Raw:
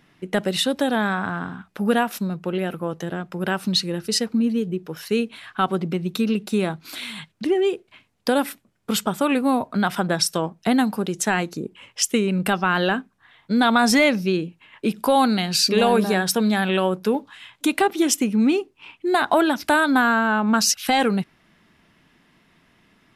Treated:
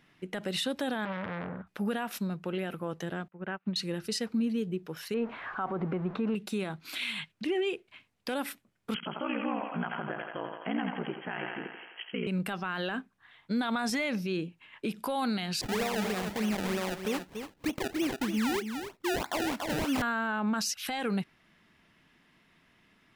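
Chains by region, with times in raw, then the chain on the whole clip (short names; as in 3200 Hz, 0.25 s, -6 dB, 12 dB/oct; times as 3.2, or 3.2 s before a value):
1.05–1.67 LPF 1800 Hz + low shelf 330 Hz +9.5 dB + core saturation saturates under 1600 Hz
3.28–3.76 LPF 2500 Hz 24 dB/oct + upward expander 2.5:1, over -40 dBFS
5.14–6.35 zero-crossing step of -35.5 dBFS + LPF 1500 Hz + bell 900 Hz +9 dB 2.3 oct
6.85–8.34 hard clip -11.5 dBFS + dynamic EQ 2600 Hz, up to +7 dB, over -48 dBFS, Q 1.9
8.94–12.27 brick-wall FIR band-pass 170–3300 Hz + ring modulator 30 Hz + thinning echo 85 ms, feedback 73%, high-pass 390 Hz, level -7 dB
15.61–20.02 air absorption 290 m + decimation with a swept rate 28× 3.2 Hz + echo 0.285 s -11.5 dB
whole clip: bell 2300 Hz +3.5 dB 1.8 oct; limiter -15.5 dBFS; gain -7.5 dB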